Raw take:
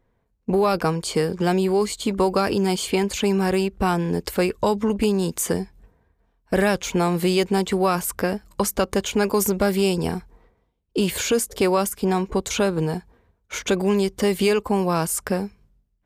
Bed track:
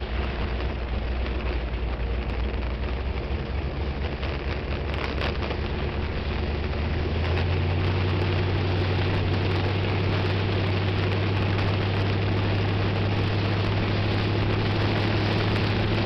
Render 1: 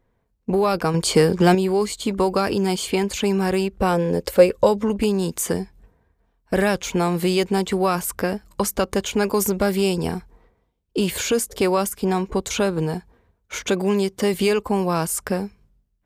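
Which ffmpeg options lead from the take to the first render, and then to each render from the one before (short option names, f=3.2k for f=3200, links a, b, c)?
-filter_complex "[0:a]asettb=1/sr,asplit=3[a][b][c];[a]atrim=end=0.944[d];[b]atrim=start=0.94:end=1.55,asetpts=PTS-STARTPTS,afade=t=in:d=0.004:c=qsin,afade=t=out:st=0.606:d=0.004:c=qsin,acontrast=66[e];[c]atrim=start=1.546[f];[d][e]acrossfade=d=0.004:c1=hsin:c2=qsin[g];[g][f]acrossfade=d=0.004:c1=qsin:c2=hsin,asettb=1/sr,asplit=3[h][i][j];[h]atrim=end=3.804[k];[i]atrim=start=3.8:end=4.83,asetpts=PTS-STARTPTS,afade=t=in:d=0.004:c=qsin,afade=t=out:st=1.026:d=0.004:c=qsin,equalizer=f=530:t=o:w=0.26:g=14[l];[j]atrim=start=4.826[m];[k][l]acrossfade=d=0.004:c1=hsin:c2=qsin[n];[n][m]acrossfade=d=0.004:c1=qsin:c2=hsin,asettb=1/sr,asplit=3[o][p][q];[o]atrim=end=13.694[r];[p]atrim=start=13.69:end=14.34,asetpts=PTS-STARTPTS,afade=t=in:d=0.004:c=qsin,afade=t=out:st=0.646:d=0.004:c=qsin,highpass=100[s];[q]atrim=start=14.336[t];[r][s]acrossfade=d=0.004:c1=hsin:c2=qsin[u];[u][t]acrossfade=d=0.004:c1=qsin:c2=hsin"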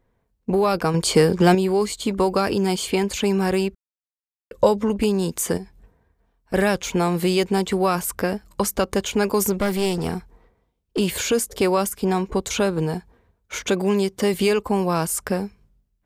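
-filter_complex "[0:a]asettb=1/sr,asplit=3[a][b][c];[a]atrim=end=5.574[d];[b]atrim=start=5.57:end=6.54,asetpts=PTS-STARTPTS,afade=t=in:d=0.004:c=qsin,afade=t=out:st=0.966:d=0.004:c=qsin,acompressor=threshold=-31dB:ratio=4:attack=3.2:release=140:knee=1:detection=peak[e];[c]atrim=start=6.536[f];[d][e]acrossfade=d=0.004:c1=hsin:c2=qsin[g];[g][f]acrossfade=d=0.004:c1=qsin:c2=hsin,asettb=1/sr,asplit=3[h][i][j];[h]atrim=end=9.534[k];[i]atrim=start=9.53:end=10.99,asetpts=PTS-STARTPTS,afade=t=in:d=0.004:c=qsin,afade=t=out:st=1.456:d=0.004:c=qsin,aeval=exprs='clip(val(0),-1,0.0944)':c=same[l];[j]atrim=start=10.986[m];[k][l]acrossfade=d=0.004:c1=hsin:c2=qsin[n];[n][m]acrossfade=d=0.004:c1=qsin:c2=hsin,asplit=3[o][p][q];[o]atrim=end=3.75,asetpts=PTS-STARTPTS,afade=t=out:st=3.746:d=0.004:c=hsin[r];[p]atrim=start=3.75:end=4.51,asetpts=PTS-STARTPTS,volume=0[s];[q]atrim=start=4.51,asetpts=PTS-STARTPTS,afade=t=in:d=0.004:c=hsin[t];[r][s][t]concat=n=3:v=0:a=1"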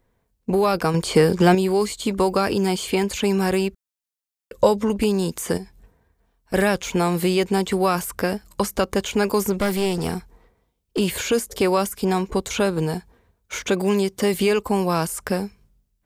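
-filter_complex "[0:a]acrossover=split=2800[a][b];[b]acompressor=threshold=-34dB:ratio=4:attack=1:release=60[c];[a][c]amix=inputs=2:normalize=0,highshelf=f=3.5k:g=7"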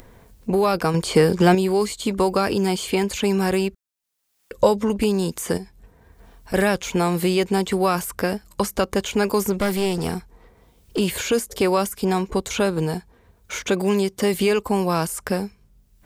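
-af "acompressor=mode=upward:threshold=-31dB:ratio=2.5"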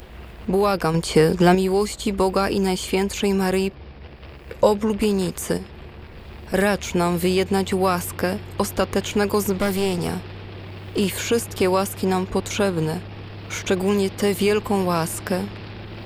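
-filter_complex "[1:a]volume=-12dB[a];[0:a][a]amix=inputs=2:normalize=0"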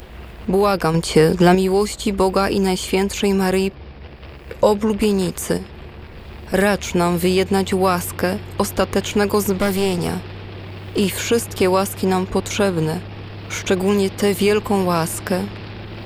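-af "volume=3dB,alimiter=limit=-3dB:level=0:latency=1"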